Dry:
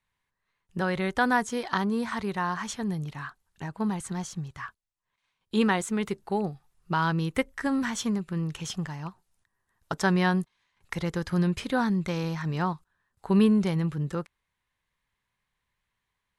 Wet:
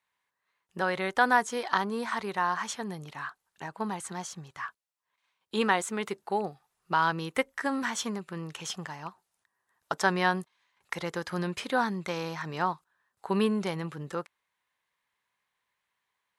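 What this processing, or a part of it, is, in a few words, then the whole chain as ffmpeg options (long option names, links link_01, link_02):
filter by subtraction: -filter_complex "[0:a]asplit=2[link_01][link_02];[link_02]lowpass=730,volume=-1[link_03];[link_01][link_03]amix=inputs=2:normalize=0"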